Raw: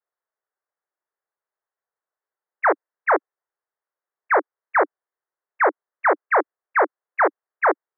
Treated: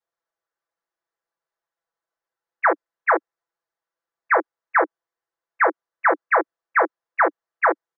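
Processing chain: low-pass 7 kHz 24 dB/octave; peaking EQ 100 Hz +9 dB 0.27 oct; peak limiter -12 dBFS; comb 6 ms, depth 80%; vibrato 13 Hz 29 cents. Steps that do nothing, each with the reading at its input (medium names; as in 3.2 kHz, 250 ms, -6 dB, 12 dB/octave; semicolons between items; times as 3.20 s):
low-pass 7 kHz: input has nothing above 2.4 kHz; peaking EQ 100 Hz: input has nothing below 270 Hz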